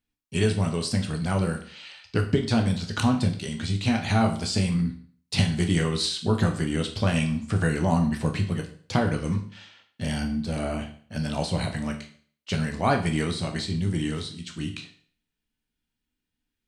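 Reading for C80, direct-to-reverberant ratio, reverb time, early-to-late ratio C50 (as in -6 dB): 14.0 dB, 3.5 dB, 0.50 s, 10.5 dB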